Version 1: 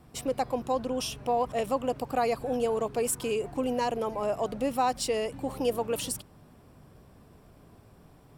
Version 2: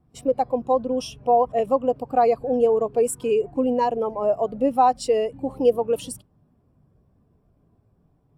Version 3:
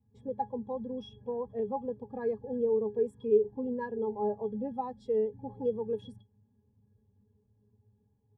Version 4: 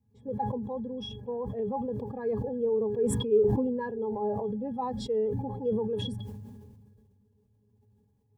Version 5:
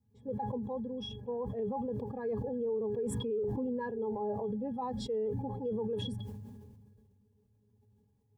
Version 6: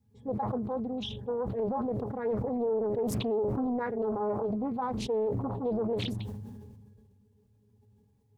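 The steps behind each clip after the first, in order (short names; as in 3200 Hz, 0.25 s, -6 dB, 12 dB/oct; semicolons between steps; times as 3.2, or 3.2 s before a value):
spectral expander 1.5:1; gain +8 dB
octave resonator G#, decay 0.11 s
sustainer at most 29 dB/s
limiter -25.5 dBFS, peak gain reduction 11 dB; gain -2.5 dB
Doppler distortion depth 0.73 ms; gain +4.5 dB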